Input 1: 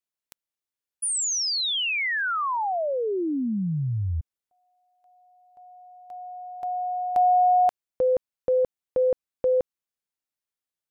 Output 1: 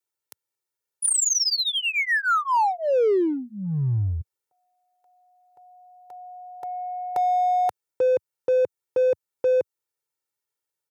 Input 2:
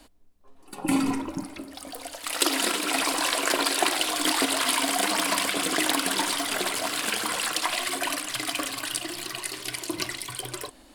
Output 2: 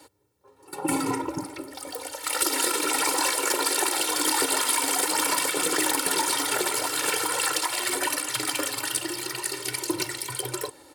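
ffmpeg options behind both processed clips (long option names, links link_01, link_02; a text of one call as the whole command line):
ffmpeg -i in.wav -filter_complex "[0:a]highpass=frequency=98:width=0.5412,highpass=frequency=98:width=1.3066,equalizer=frequency=3100:width_type=o:width=1.3:gain=-5,aecho=1:1:2.2:1,acrossover=split=5400[link_01][link_02];[link_01]alimiter=limit=-17.5dB:level=0:latency=1:release=193[link_03];[link_03][link_02]amix=inputs=2:normalize=0,asoftclip=type=tanh:threshold=-22dB,asplit=2[link_04][link_05];[link_05]acrusher=bits=3:mix=0:aa=0.5,volume=-4.5dB[link_06];[link_04][link_06]amix=inputs=2:normalize=0,volume=2dB" out.wav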